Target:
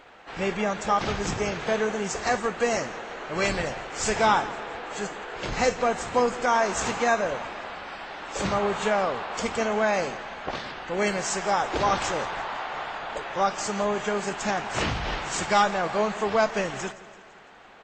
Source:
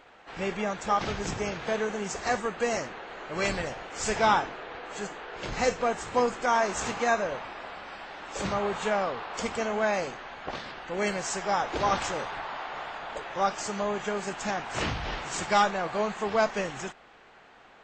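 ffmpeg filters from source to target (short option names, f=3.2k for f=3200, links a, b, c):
-filter_complex "[0:a]asplit=2[a][b];[b]alimiter=limit=-19dB:level=0:latency=1:release=197,volume=-2.5dB[c];[a][c]amix=inputs=2:normalize=0,aecho=1:1:168|336|504|672|840:0.126|0.073|0.0424|0.0246|0.0142,volume=-1dB"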